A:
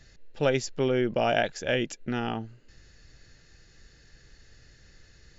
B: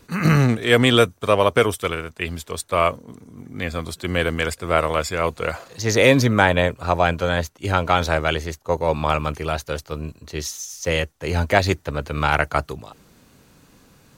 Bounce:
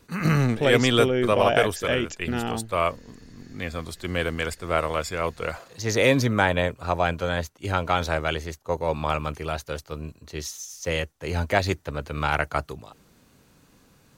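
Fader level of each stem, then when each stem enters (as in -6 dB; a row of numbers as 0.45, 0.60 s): +2.0, -5.0 dB; 0.20, 0.00 s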